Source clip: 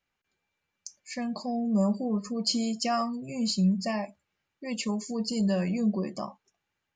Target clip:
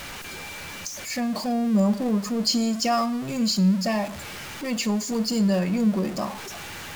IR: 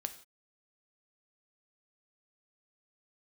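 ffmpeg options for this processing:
-filter_complex "[0:a]aeval=exprs='val(0)+0.5*0.02*sgn(val(0))':c=same,asplit=2[s0][s1];[1:a]atrim=start_sample=2205,asetrate=34398,aresample=44100[s2];[s1][s2]afir=irnorm=-1:irlink=0,volume=0.501[s3];[s0][s3]amix=inputs=2:normalize=0"

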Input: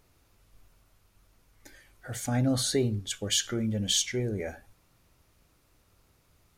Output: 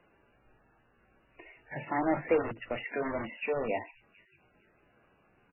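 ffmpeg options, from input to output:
-filter_complex "[0:a]acrossover=split=150 3300:gain=0.2 1 0.126[s0][s1][s2];[s0][s1][s2]amix=inputs=3:normalize=0,asetrate=52479,aresample=44100,acrossover=split=320|2000[s3][s4][s5];[s3]aeval=exprs='(mod(63.1*val(0)+1,2)-1)/63.1':c=same[s6];[s5]aecho=1:1:450|900|1350:0.178|0.0445|0.0111[s7];[s6][s4][s7]amix=inputs=3:normalize=0,volume=1.58" -ar 11025 -c:a libmp3lame -b:a 8k

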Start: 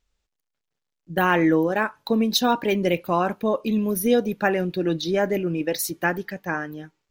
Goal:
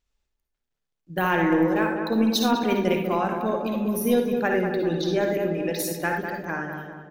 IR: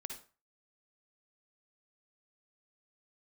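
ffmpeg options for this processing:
-filter_complex "[0:a]asplit=2[s0][s1];[s1]adelay=200,lowpass=f=1600:p=1,volume=0.562,asplit=2[s2][s3];[s3]adelay=200,lowpass=f=1600:p=1,volume=0.55,asplit=2[s4][s5];[s5]adelay=200,lowpass=f=1600:p=1,volume=0.55,asplit=2[s6][s7];[s7]adelay=200,lowpass=f=1600:p=1,volume=0.55,asplit=2[s8][s9];[s9]adelay=200,lowpass=f=1600:p=1,volume=0.55,asplit=2[s10][s11];[s11]adelay=200,lowpass=f=1600:p=1,volume=0.55,asplit=2[s12][s13];[s13]adelay=200,lowpass=f=1600:p=1,volume=0.55[s14];[s0][s2][s4][s6][s8][s10][s12][s14]amix=inputs=8:normalize=0[s15];[1:a]atrim=start_sample=2205,atrim=end_sample=6174[s16];[s15][s16]afir=irnorm=-1:irlink=0,aeval=exprs='0.335*(cos(1*acos(clip(val(0)/0.335,-1,1)))-cos(1*PI/2))+0.0335*(cos(2*acos(clip(val(0)/0.335,-1,1)))-cos(2*PI/2))+0.00473*(cos(4*acos(clip(val(0)/0.335,-1,1)))-cos(4*PI/2))':c=same"

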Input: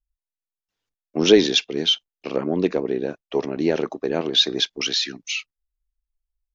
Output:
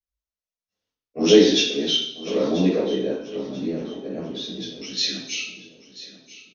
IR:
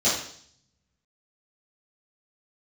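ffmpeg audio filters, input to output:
-filter_complex "[0:a]asettb=1/sr,asplit=3[s0][s1][s2];[s0]atrim=end=3.214[s3];[s1]atrim=start=3.21:end=4.97,asetpts=PTS-STARTPTS,afade=t=in:d=0.004:c=qsin,afade=t=out:st=1.756:d=0.004:c=qsin,acrossover=split=240[s4][s5];[s5]acompressor=threshold=0.00708:ratio=2[s6];[s4][s6]amix=inputs=2:normalize=0[s7];[s2]atrim=start=4.966[s8];[s3][s7]acrossfade=d=0.004:c1=hsin:c2=qsin[s9];[s9][s8]acrossfade=d=0.004:c1=qsin:c2=hsin,aecho=1:1:987|1974|2961:0.158|0.0507|0.0162[s10];[1:a]atrim=start_sample=2205,asetrate=39249,aresample=44100[s11];[s10][s11]afir=irnorm=-1:irlink=0,volume=0.141"

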